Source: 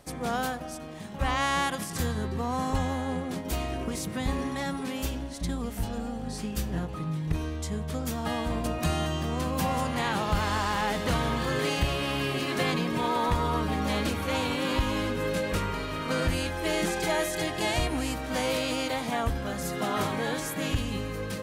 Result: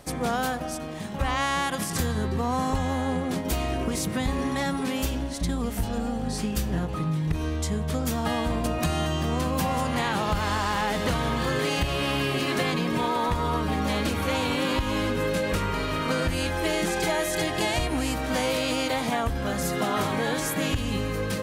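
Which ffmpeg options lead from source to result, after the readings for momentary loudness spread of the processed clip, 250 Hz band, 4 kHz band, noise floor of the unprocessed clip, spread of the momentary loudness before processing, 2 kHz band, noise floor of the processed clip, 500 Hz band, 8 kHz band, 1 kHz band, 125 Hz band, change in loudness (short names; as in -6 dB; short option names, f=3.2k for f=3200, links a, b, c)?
3 LU, +3.5 dB, +2.5 dB, -37 dBFS, 6 LU, +2.5 dB, -31 dBFS, +3.0 dB, +3.5 dB, +2.5 dB, +3.0 dB, +3.0 dB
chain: -af "acompressor=threshold=-28dB:ratio=6,volume=6dB"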